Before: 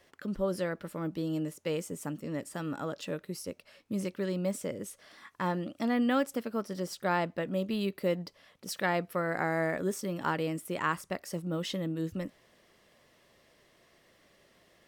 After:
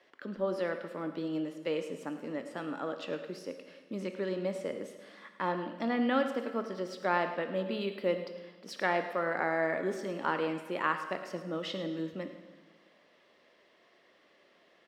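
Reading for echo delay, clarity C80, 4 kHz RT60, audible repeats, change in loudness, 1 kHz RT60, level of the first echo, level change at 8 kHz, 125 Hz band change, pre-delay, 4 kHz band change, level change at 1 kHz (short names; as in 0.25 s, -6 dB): 0.107 s, 9.0 dB, 1.4 s, 1, -1.0 dB, 1.4 s, -13.5 dB, under -10 dB, -8.0 dB, 16 ms, -1.0 dB, +1.0 dB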